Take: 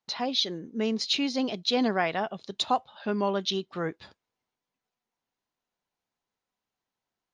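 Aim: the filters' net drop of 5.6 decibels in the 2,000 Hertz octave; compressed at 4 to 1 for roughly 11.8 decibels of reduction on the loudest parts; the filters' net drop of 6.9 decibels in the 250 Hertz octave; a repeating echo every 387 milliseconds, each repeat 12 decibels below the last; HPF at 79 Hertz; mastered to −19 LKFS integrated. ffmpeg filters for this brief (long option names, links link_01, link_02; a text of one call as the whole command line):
ffmpeg -i in.wav -af "highpass=79,equalizer=frequency=250:width_type=o:gain=-8,equalizer=frequency=2000:width_type=o:gain=-7.5,acompressor=threshold=-38dB:ratio=4,aecho=1:1:387|774|1161:0.251|0.0628|0.0157,volume=21.5dB" out.wav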